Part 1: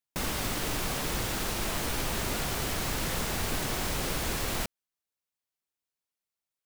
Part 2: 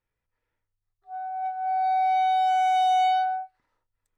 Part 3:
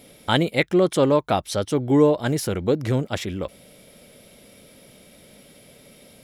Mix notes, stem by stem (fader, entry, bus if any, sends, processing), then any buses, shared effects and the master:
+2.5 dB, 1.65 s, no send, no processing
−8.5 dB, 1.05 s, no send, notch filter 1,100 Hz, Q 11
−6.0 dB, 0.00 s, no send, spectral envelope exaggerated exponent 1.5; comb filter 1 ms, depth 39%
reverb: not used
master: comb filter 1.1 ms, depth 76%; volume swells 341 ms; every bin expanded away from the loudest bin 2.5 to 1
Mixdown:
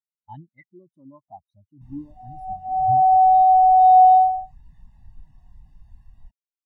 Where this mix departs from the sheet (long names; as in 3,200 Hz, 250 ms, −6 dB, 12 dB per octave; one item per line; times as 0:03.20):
stem 2 −8.5 dB → +3.0 dB
master: missing volume swells 341 ms